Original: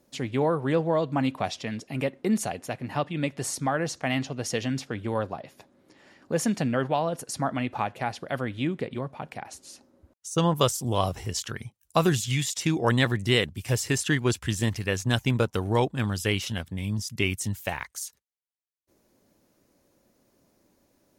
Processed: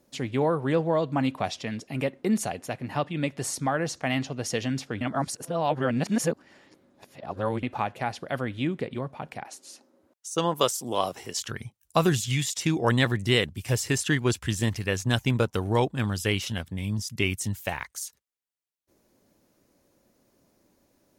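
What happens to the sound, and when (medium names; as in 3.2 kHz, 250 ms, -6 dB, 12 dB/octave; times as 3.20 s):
5.01–7.63 s: reverse
9.44–11.41 s: high-pass 260 Hz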